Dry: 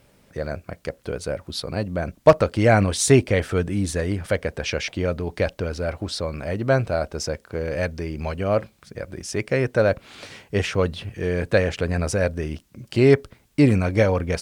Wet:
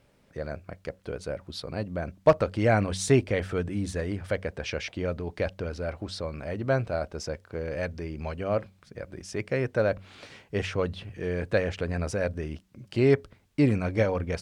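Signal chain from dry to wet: high shelf 7400 Hz -9 dB; de-hum 94.82 Hz, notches 2; gain -6 dB

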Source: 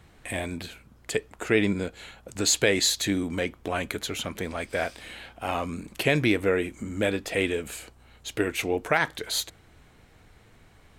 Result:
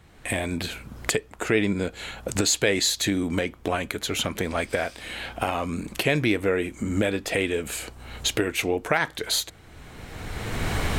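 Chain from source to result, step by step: recorder AGC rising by 22 dB/s

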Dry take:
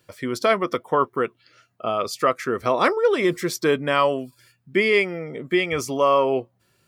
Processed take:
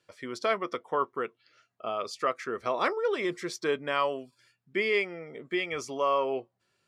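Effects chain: LPF 7300 Hz 12 dB/oct; low shelf 210 Hz -11 dB; on a send: reverb, pre-delay 3 ms, DRR 18 dB; on the sum: gain -7.5 dB

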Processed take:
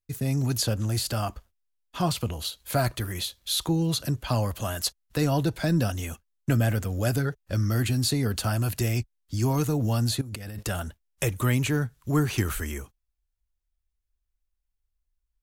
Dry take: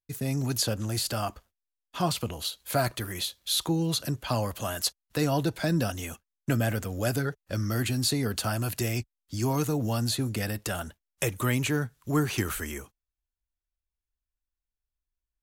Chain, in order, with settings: low shelf 99 Hz +11.5 dB; 10.21–10.63 negative-ratio compressor -37 dBFS, ratio -1

